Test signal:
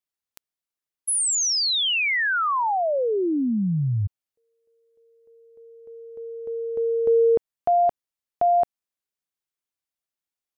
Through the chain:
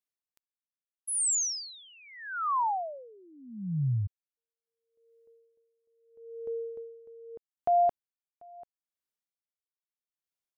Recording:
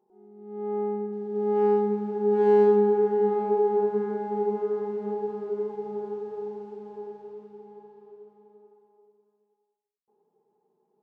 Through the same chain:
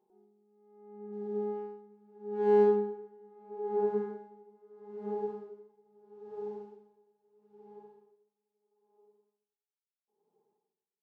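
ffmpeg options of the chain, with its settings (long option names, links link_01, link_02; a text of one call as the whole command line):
ffmpeg -i in.wav -af "aeval=exprs='val(0)*pow(10,-28*(0.5-0.5*cos(2*PI*0.77*n/s))/20)':channel_layout=same,volume=-4dB" out.wav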